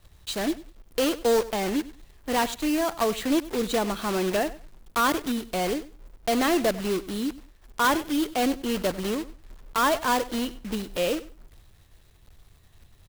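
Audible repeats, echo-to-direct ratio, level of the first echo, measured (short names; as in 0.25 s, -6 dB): 2, -17.5 dB, -17.5 dB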